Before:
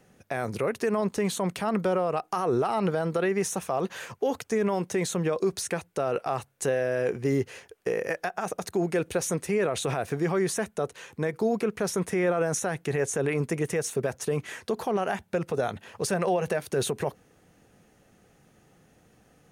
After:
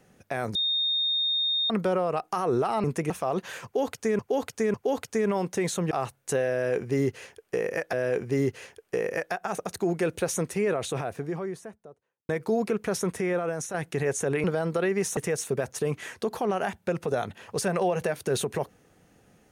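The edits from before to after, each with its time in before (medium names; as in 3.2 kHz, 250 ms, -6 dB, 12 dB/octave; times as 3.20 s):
0.55–1.70 s: bleep 3.68 kHz -23 dBFS
2.84–3.57 s: swap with 13.37–13.63 s
4.11–4.66 s: loop, 3 plays
5.28–6.24 s: delete
6.86–8.26 s: loop, 2 plays
9.39–11.22 s: studio fade out
11.93–12.67 s: fade out, to -7 dB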